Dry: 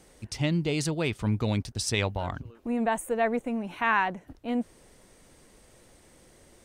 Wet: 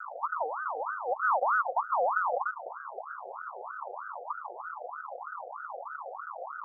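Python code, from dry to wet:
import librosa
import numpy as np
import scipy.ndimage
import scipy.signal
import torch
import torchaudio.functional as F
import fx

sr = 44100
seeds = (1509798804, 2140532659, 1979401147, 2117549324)

y = fx.bin_compress(x, sr, power=0.4)
y = scipy.signal.sosfilt(scipy.signal.cheby2(4, 70, 510.0, 'lowpass', fs=sr, output='sos'), y)
y = fx.cheby_harmonics(y, sr, harmonics=(6,), levels_db=(-37,), full_scale_db=-22.5)
y = y + 10.0 ** (-19.5 / 20.0) * np.pad(y, (int(296 * sr / 1000.0), 0))[:len(y)]
y = fx.ring_lfo(y, sr, carrier_hz=1000.0, swing_pct=40, hz=3.2)
y = F.gain(torch.from_numpy(y), 6.0).numpy()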